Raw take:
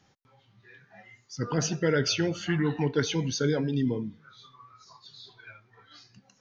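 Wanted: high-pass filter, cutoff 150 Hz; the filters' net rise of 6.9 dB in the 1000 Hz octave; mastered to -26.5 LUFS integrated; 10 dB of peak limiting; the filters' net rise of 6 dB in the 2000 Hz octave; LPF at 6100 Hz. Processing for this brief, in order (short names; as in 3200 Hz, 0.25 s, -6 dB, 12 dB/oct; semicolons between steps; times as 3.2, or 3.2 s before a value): HPF 150 Hz; LPF 6100 Hz; bell 1000 Hz +7.5 dB; bell 2000 Hz +5 dB; gain +3 dB; limiter -16 dBFS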